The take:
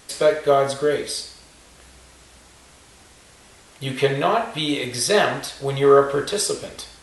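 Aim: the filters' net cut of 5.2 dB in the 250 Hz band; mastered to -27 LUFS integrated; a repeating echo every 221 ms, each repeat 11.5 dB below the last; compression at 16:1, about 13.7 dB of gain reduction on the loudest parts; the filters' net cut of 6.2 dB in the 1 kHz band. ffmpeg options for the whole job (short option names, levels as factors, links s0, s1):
-af "equalizer=f=250:t=o:g=-6.5,equalizer=f=1000:t=o:g=-9,acompressor=threshold=0.0447:ratio=16,aecho=1:1:221|442|663:0.266|0.0718|0.0194,volume=1.68"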